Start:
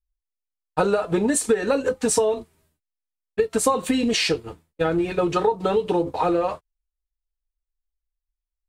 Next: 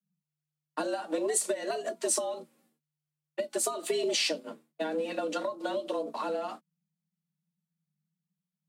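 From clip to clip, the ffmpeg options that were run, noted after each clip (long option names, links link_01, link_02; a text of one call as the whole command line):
ffmpeg -i in.wav -filter_complex "[0:a]afreqshift=150,acrossover=split=360|3000[link_01][link_02][link_03];[link_02]acompressor=threshold=-29dB:ratio=6[link_04];[link_01][link_04][link_03]amix=inputs=3:normalize=0,volume=-4.5dB" out.wav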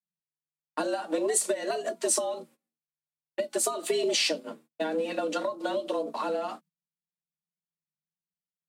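ffmpeg -i in.wav -af "agate=range=-22dB:threshold=-56dB:ratio=16:detection=peak,volume=2.5dB" out.wav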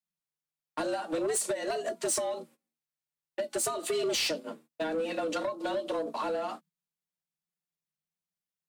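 ffmpeg -i in.wav -af "asoftclip=type=tanh:threshold=-24.5dB" out.wav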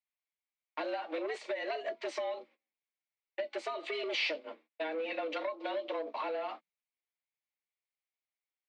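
ffmpeg -i in.wav -af "highpass=frequency=340:width=0.5412,highpass=frequency=340:width=1.3066,equalizer=frequency=410:width_type=q:width=4:gain=-5,equalizer=frequency=1400:width_type=q:width=4:gain=-4,equalizer=frequency=2200:width_type=q:width=4:gain=10,lowpass=frequency=4000:width=0.5412,lowpass=frequency=4000:width=1.3066,volume=-3dB" out.wav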